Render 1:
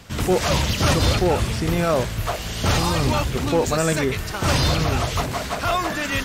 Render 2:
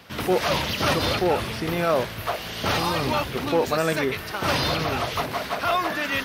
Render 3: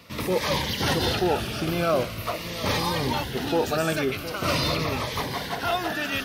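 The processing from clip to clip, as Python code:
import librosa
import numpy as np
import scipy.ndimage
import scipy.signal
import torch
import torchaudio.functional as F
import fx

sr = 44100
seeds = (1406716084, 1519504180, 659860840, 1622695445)

y1 = fx.highpass(x, sr, hz=310.0, slope=6)
y1 = fx.peak_eq(y1, sr, hz=7400.0, db=-14.0, octaves=0.58)
y2 = y1 + 10.0 ** (-13.0 / 20.0) * np.pad(y1, (int(714 * sr / 1000.0), 0))[:len(y1)]
y2 = fx.notch_cascade(y2, sr, direction='falling', hz=0.43)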